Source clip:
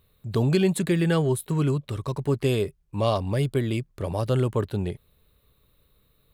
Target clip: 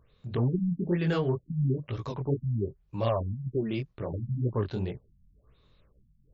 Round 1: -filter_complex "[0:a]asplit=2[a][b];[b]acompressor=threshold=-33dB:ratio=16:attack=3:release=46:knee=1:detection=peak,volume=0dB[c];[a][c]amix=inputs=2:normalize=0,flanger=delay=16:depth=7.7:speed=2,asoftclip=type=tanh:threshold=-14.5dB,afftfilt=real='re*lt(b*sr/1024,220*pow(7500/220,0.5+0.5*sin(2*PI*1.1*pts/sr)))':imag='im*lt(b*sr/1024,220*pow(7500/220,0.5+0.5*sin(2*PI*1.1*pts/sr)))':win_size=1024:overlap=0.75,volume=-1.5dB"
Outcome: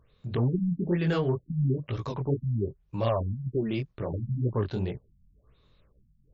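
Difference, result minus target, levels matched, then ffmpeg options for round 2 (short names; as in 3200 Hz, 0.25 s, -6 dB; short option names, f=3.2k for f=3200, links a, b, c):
compressor: peak gain reduction -10.5 dB
-filter_complex "[0:a]asplit=2[a][b];[b]acompressor=threshold=-44dB:ratio=16:attack=3:release=46:knee=1:detection=peak,volume=0dB[c];[a][c]amix=inputs=2:normalize=0,flanger=delay=16:depth=7.7:speed=2,asoftclip=type=tanh:threshold=-14.5dB,afftfilt=real='re*lt(b*sr/1024,220*pow(7500/220,0.5+0.5*sin(2*PI*1.1*pts/sr)))':imag='im*lt(b*sr/1024,220*pow(7500/220,0.5+0.5*sin(2*PI*1.1*pts/sr)))':win_size=1024:overlap=0.75,volume=-1.5dB"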